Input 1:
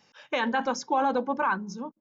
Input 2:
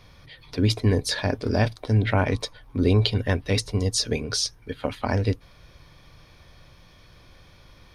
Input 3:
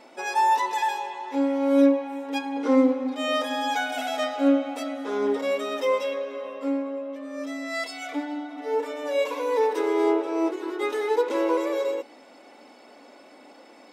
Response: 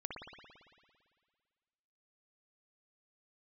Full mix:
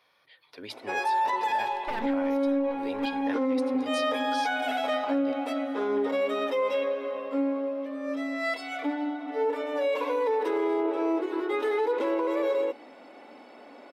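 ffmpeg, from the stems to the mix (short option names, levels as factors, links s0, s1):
-filter_complex "[0:a]aeval=exprs='max(val(0),0)':c=same,adelay=1550,volume=0.75,afade=t=out:st=2.22:d=0.41:silence=0.251189[s0];[1:a]highpass=580,volume=0.376,asplit=2[s1][s2];[2:a]highshelf=f=10000:g=-10.5,adelay=700,volume=1.19[s3];[s2]apad=whole_len=156730[s4];[s0][s4]sidechaincompress=threshold=0.00891:ratio=8:attack=24:release=120[s5];[s5][s1][s3]amix=inputs=3:normalize=0,equalizer=f=6600:t=o:w=1:g=-10,alimiter=limit=0.106:level=0:latency=1:release=37"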